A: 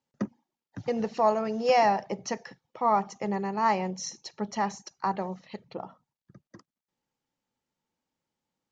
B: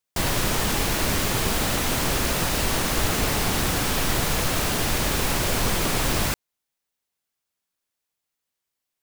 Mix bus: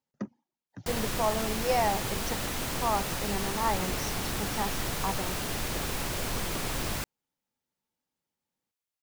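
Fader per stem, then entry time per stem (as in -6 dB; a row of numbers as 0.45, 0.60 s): -5.0, -9.0 dB; 0.00, 0.70 s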